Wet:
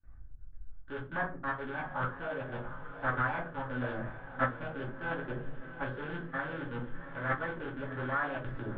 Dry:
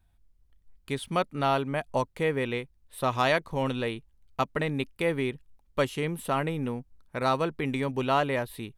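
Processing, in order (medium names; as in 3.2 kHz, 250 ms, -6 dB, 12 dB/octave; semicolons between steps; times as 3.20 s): rattle on loud lows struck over -37 dBFS, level -17 dBFS; gate with hold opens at -59 dBFS; bass shelf 220 Hz +8.5 dB; reverse; compression 8:1, threshold -36 dBFS, peak gain reduction 17.5 dB; reverse; trance gate "xxxx.x.xxxxxx." 199 bpm -60 dB; in parallel at -3 dB: saturation -36.5 dBFS, distortion -11 dB; on the sum: Chebyshev shaper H 2 -15 dB, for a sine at -21.5 dBFS; four-pole ladder low-pass 1.2 kHz, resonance 85%; echo that smears into a reverb 725 ms, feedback 51%, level -11 dB; simulated room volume 140 m³, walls furnished, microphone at 2.4 m; formant shift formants +5 st; trim +4 dB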